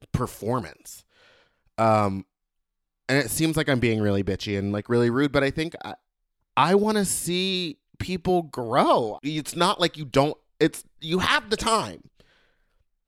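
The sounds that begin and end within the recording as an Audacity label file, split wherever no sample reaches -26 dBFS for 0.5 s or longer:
1.790000	2.200000	sound
3.090000	5.920000	sound
6.570000	11.900000	sound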